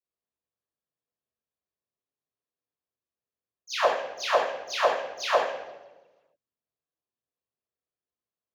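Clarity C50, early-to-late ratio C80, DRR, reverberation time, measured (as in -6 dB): 1.5 dB, 5.0 dB, -10.0 dB, 1.2 s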